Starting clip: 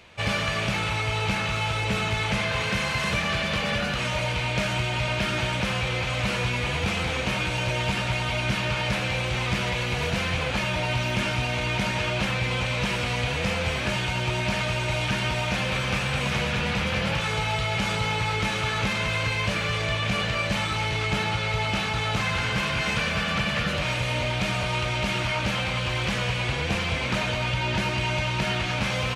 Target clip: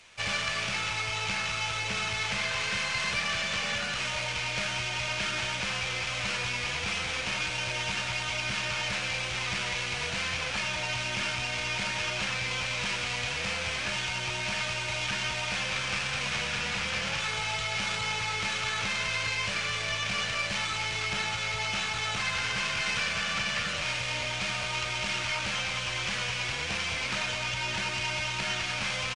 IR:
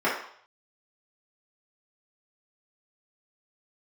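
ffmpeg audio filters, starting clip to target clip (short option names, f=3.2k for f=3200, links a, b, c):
-filter_complex "[0:a]acrossover=split=1900[a][b];[b]aeval=exprs='max(val(0),0)':c=same[c];[a][c]amix=inputs=2:normalize=0,tiltshelf=f=1.3k:g=-9.5,acrossover=split=7000[d][e];[e]acompressor=threshold=-47dB:ratio=4:attack=1:release=60[f];[d][f]amix=inputs=2:normalize=0,aresample=22050,aresample=44100,volume=-3.5dB"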